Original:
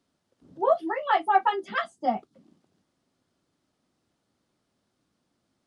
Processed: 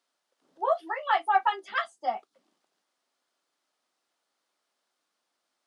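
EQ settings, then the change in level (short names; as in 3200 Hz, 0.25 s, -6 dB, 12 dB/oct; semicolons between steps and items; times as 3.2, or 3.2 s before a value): HPF 720 Hz 12 dB/oct; 0.0 dB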